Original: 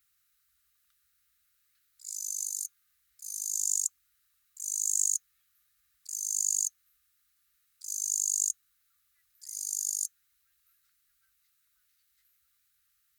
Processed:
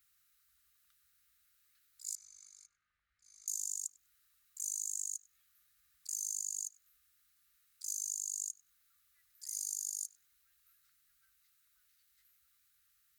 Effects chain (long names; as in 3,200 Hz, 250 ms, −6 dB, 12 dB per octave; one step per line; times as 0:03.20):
0:02.15–0:03.48: low-pass filter 1,900 Hz 12 dB per octave
downward compressor 16 to 1, threshold −34 dBFS, peak gain reduction 13 dB
tape delay 96 ms, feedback 88%, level −9 dB, low-pass 1,100 Hz